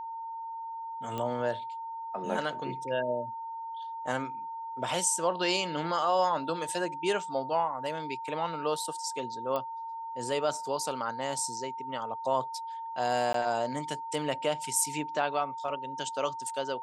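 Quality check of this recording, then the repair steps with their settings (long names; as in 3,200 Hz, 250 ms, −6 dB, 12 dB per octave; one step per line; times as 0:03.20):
whistle 910 Hz −36 dBFS
0:01.18: click −21 dBFS
0:09.56: click −20 dBFS
0:13.33–0:13.34: drop-out 13 ms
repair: click removal
notch filter 910 Hz, Q 30
repair the gap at 0:13.33, 13 ms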